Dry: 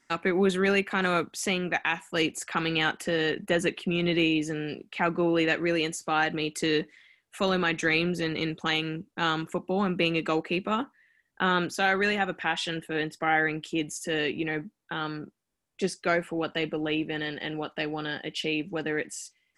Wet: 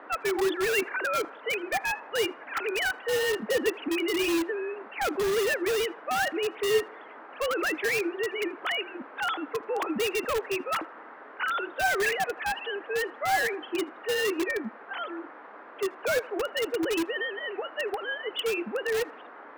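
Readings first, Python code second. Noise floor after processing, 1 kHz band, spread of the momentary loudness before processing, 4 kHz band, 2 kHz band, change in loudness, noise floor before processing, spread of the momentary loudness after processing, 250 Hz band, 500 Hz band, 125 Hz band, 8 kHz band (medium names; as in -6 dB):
-47 dBFS, -1.0 dB, 8 LU, -2.0 dB, -1.0 dB, -1.0 dB, -74 dBFS, 8 LU, -5.5 dB, +1.5 dB, -17.0 dB, +1.0 dB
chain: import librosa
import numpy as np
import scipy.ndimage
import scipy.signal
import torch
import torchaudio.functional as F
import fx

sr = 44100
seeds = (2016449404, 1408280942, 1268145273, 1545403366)

p1 = fx.sine_speech(x, sr)
p2 = fx.dmg_noise_band(p1, sr, seeds[0], low_hz=270.0, high_hz=1600.0, level_db=-48.0)
p3 = fx.notch(p2, sr, hz=360.0, q=12.0)
p4 = (np.mod(10.0 ** (22.5 / 20.0) * p3 + 1.0, 2.0) - 1.0) / 10.0 ** (22.5 / 20.0)
p5 = p3 + (p4 * 10.0 ** (-6.0 / 20.0))
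p6 = fx.echo_banded(p5, sr, ms=80, feedback_pct=75, hz=990.0, wet_db=-20.5)
y = p6 * 10.0 ** (-2.0 / 20.0)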